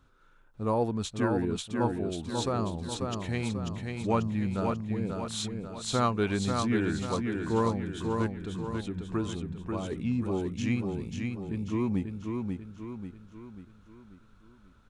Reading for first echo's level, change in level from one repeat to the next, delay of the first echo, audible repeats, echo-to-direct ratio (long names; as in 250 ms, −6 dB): −4.5 dB, −6.5 dB, 540 ms, 5, −3.5 dB